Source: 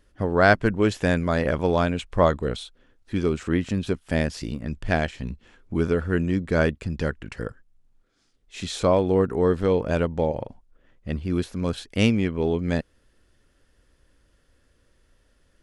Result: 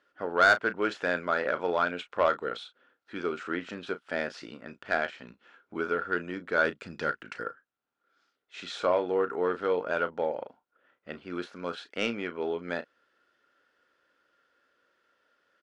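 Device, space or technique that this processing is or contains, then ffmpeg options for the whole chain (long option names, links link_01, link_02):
intercom: -filter_complex "[0:a]highpass=430,lowpass=4000,equalizer=frequency=1400:width_type=o:width=0.27:gain=11.5,asoftclip=type=tanh:threshold=-10dB,asplit=2[link_01][link_02];[link_02]adelay=34,volume=-12dB[link_03];[link_01][link_03]amix=inputs=2:normalize=0,asettb=1/sr,asplit=3[link_04][link_05][link_06];[link_04]atrim=end=6.654[link_07];[link_05]atrim=start=6.65:end=7.43,asetpts=PTS-STARTPTS,afade=type=in:duration=0.004:curve=qsin,afade=type=out:start_time=0.776:duration=0.004:curve=qsin,bass=frequency=250:gain=6,treble=frequency=4000:gain=7[link_08];[link_06]atrim=start=7.426[link_09];[link_07][link_08]acrossfade=duration=0.004:curve1=hsin:curve2=qsin[link_10];[link_10][link_09]acrossfade=duration=0.004:curve1=qsin:curve2=hsin,volume=-3.5dB"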